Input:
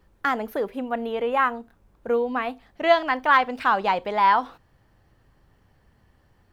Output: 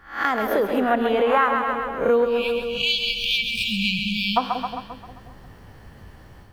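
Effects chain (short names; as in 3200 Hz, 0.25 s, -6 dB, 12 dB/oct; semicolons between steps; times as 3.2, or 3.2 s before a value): spectral swells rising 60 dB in 0.40 s; notch 7200 Hz, Q 24; spectral delete 2.25–4.37, 220–2300 Hz; AGC gain up to 11 dB; split-band echo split 630 Hz, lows 0.178 s, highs 0.132 s, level -7 dB; compressor 2.5:1, threshold -21 dBFS, peak gain reduction 9 dB; gain +2 dB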